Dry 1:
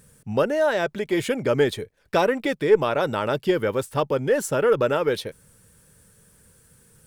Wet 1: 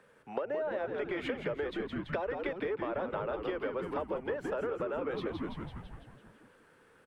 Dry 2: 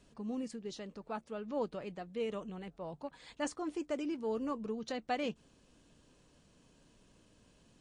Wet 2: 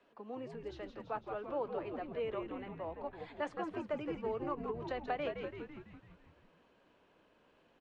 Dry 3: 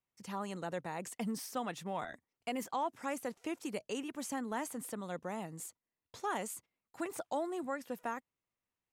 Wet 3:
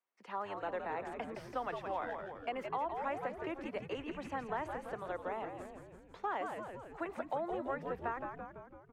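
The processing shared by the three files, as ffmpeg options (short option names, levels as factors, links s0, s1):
-filter_complex "[0:a]asplit=2[s0][s1];[s1]highpass=f=720:p=1,volume=3.16,asoftclip=type=tanh:threshold=0.473[s2];[s0][s2]amix=inputs=2:normalize=0,lowpass=f=1300:p=1,volume=0.501,acrossover=split=270|630[s3][s4][s5];[s3]acompressor=threshold=0.00447:ratio=4[s6];[s4]acompressor=threshold=0.0501:ratio=4[s7];[s5]acompressor=threshold=0.0251:ratio=4[s8];[s6][s7][s8]amix=inputs=3:normalize=0,acrossover=split=270 3400:gain=0.141 1 0.0794[s9][s10][s11];[s9][s10][s11]amix=inputs=3:normalize=0,asplit=9[s12][s13][s14][s15][s16][s17][s18][s19][s20];[s13]adelay=167,afreqshift=-94,volume=0.473[s21];[s14]adelay=334,afreqshift=-188,volume=0.288[s22];[s15]adelay=501,afreqshift=-282,volume=0.176[s23];[s16]adelay=668,afreqshift=-376,volume=0.107[s24];[s17]adelay=835,afreqshift=-470,volume=0.0653[s25];[s18]adelay=1002,afreqshift=-564,volume=0.0398[s26];[s19]adelay=1169,afreqshift=-658,volume=0.0243[s27];[s20]adelay=1336,afreqshift=-752,volume=0.0148[s28];[s12][s21][s22][s23][s24][s25][s26][s27][s28]amix=inputs=9:normalize=0,acompressor=threshold=0.0251:ratio=6,highshelf=f=6200:g=9.5"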